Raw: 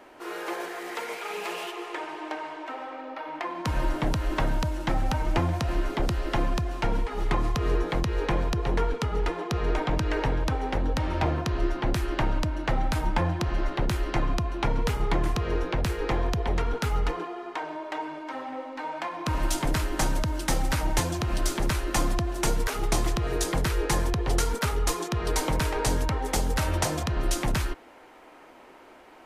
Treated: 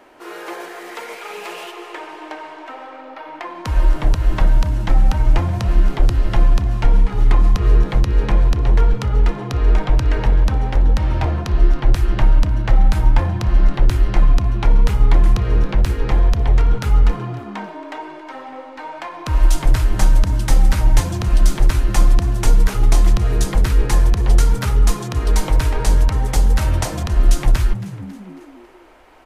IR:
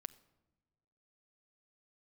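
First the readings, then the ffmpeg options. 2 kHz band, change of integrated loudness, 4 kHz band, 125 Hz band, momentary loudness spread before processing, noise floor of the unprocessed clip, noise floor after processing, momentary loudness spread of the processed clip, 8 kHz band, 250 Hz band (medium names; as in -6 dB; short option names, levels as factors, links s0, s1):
+2.5 dB, +10.5 dB, +2.5 dB, +11.0 dB, 8 LU, -50 dBFS, -37 dBFS, 16 LU, +2.5 dB, +4.0 dB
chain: -filter_complex "[0:a]asubboost=boost=5.5:cutoff=67,asplit=5[s0][s1][s2][s3][s4];[s1]adelay=274,afreqshift=80,volume=0.133[s5];[s2]adelay=548,afreqshift=160,volume=0.0684[s6];[s3]adelay=822,afreqshift=240,volume=0.0347[s7];[s4]adelay=1096,afreqshift=320,volume=0.0178[s8];[s0][s5][s6][s7][s8]amix=inputs=5:normalize=0,volume=1.33"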